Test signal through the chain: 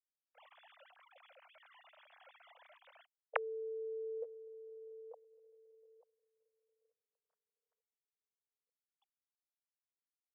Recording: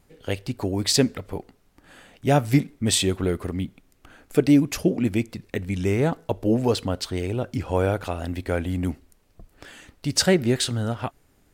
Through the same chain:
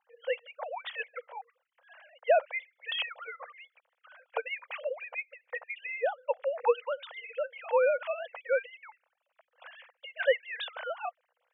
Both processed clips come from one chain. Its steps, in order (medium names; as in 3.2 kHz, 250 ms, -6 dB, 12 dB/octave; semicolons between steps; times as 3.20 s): formants replaced by sine waves; brick-wall FIR high-pass 470 Hz